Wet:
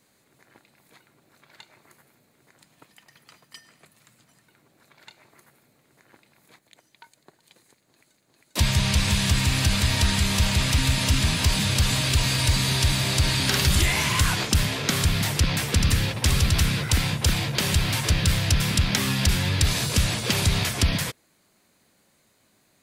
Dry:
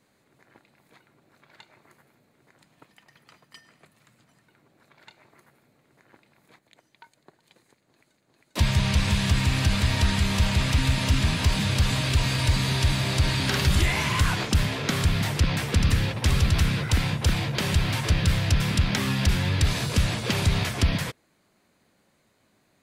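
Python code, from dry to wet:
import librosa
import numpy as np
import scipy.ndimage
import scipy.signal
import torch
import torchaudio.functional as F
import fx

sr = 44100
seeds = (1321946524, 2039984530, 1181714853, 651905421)

y = fx.high_shelf(x, sr, hz=4200.0, db=9.5)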